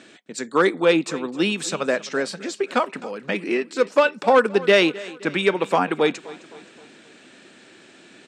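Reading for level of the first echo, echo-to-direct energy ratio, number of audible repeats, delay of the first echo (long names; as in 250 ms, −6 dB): −19.0 dB, −18.0 dB, 3, 261 ms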